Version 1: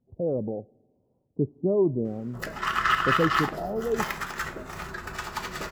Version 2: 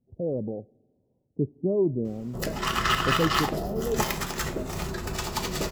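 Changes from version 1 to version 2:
background +9.0 dB
master: add parametric band 1,500 Hz −13.5 dB 1.4 octaves

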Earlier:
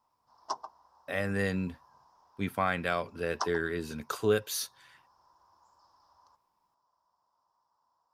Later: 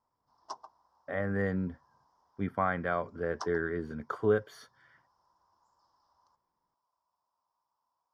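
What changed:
speech: add Savitzky-Golay smoothing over 41 samples
background −7.0 dB

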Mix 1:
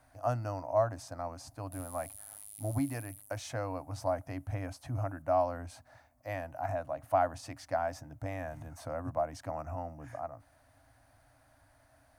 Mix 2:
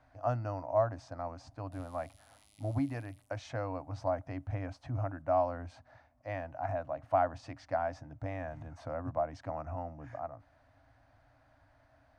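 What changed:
background +4.0 dB
master: add high-frequency loss of the air 150 metres

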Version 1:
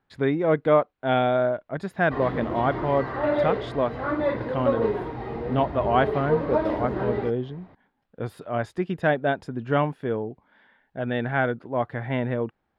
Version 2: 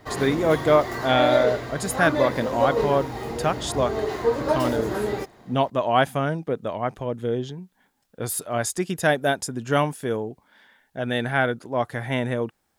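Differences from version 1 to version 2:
background: entry −2.05 s
master: remove high-frequency loss of the air 400 metres

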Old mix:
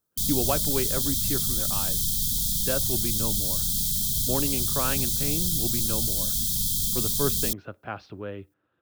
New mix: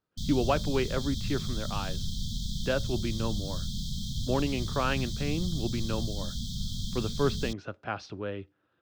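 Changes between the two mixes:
speech: remove high-frequency loss of the air 360 metres
master: add high-frequency loss of the air 190 metres

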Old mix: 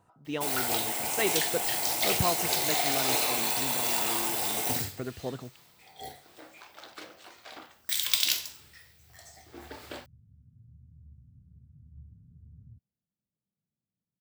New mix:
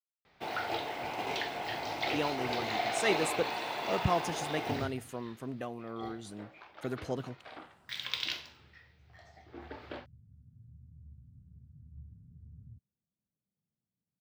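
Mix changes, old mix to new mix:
speech: entry +1.85 s
first sound: add high-frequency loss of the air 290 metres

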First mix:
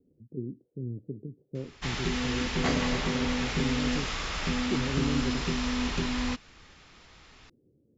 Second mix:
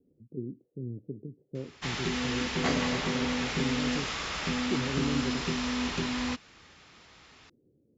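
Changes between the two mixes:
background: add high-pass filter 58 Hz
master: add low-shelf EQ 120 Hz −5 dB

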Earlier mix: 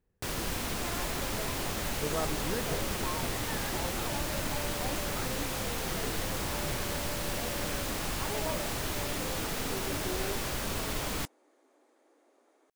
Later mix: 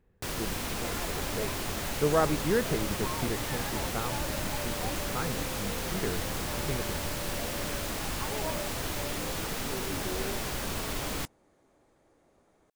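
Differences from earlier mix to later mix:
speech +9.5 dB
second sound: remove Butterworth high-pass 250 Hz 72 dB per octave

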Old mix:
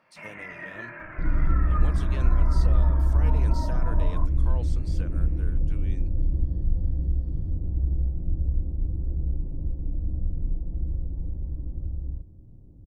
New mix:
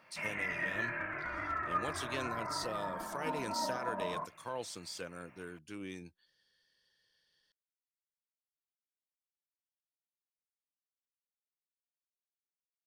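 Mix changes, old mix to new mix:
second sound: muted
master: add high-shelf EQ 2,500 Hz +8.5 dB

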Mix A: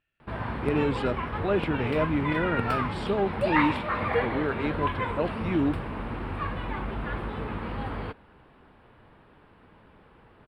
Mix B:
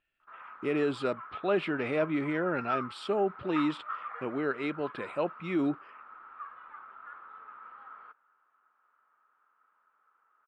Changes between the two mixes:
background: add resonant band-pass 1,300 Hz, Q 11
master: add parametric band 110 Hz −10 dB 2 octaves

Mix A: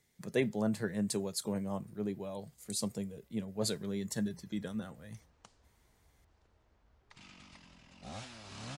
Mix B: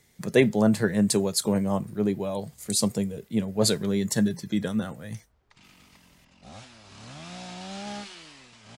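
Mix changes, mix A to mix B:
speech +11.5 dB
background: entry −1.60 s

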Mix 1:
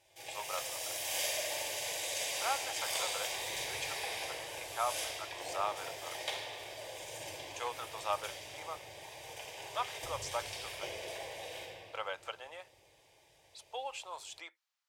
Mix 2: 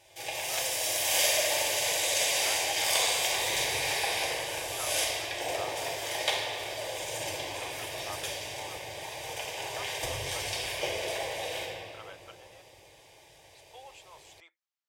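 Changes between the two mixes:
speech −9.0 dB
background +9.5 dB

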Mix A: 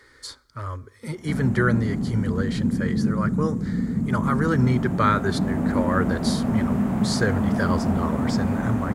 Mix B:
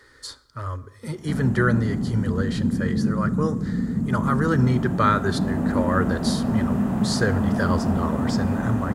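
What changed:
speech: send +9.0 dB
master: add notch filter 2,200 Hz, Q 8.8

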